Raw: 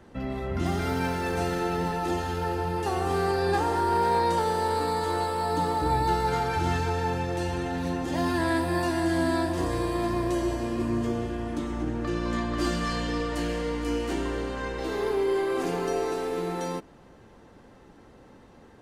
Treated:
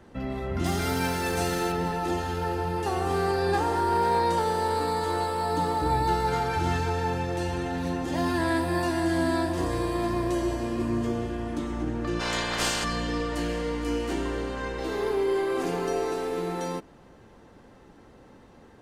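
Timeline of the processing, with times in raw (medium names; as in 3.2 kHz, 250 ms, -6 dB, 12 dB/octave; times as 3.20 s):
0.64–1.72 s: treble shelf 3.7 kHz +10 dB
12.19–12.83 s: spectral peaks clipped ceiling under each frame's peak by 25 dB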